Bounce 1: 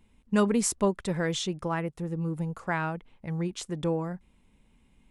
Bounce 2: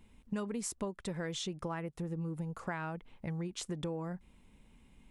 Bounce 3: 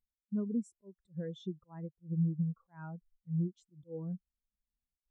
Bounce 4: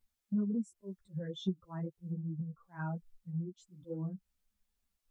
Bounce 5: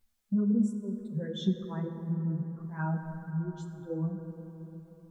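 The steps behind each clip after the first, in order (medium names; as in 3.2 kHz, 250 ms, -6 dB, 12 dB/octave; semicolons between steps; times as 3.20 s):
compression 6:1, threshold -37 dBFS, peak gain reduction 17 dB; trim +1.5 dB
slow attack 118 ms; spectral contrast expander 2.5:1
compression 6:1, threshold -42 dBFS, peak gain reduction 14.5 dB; three-phase chorus; trim +12 dB
plate-style reverb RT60 4.2 s, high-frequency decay 0.3×, DRR 5.5 dB; trim +5 dB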